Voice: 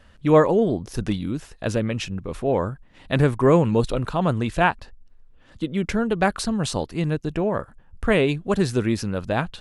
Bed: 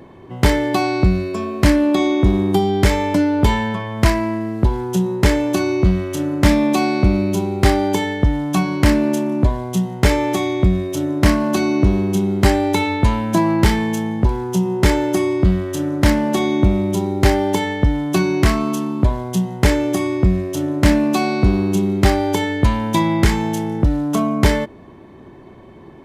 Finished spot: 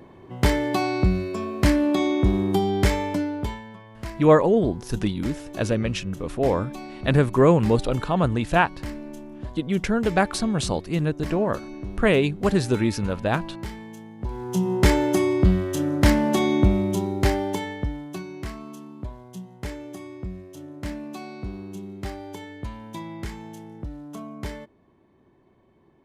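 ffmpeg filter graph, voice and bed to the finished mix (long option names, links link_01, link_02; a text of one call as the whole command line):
ffmpeg -i stem1.wav -i stem2.wav -filter_complex "[0:a]adelay=3950,volume=0dB[link_01];[1:a]volume=11.5dB,afade=type=out:start_time=2.87:duration=0.75:silence=0.188365,afade=type=in:start_time=14.18:duration=0.56:silence=0.141254,afade=type=out:start_time=16.55:duration=1.69:silence=0.158489[link_02];[link_01][link_02]amix=inputs=2:normalize=0" out.wav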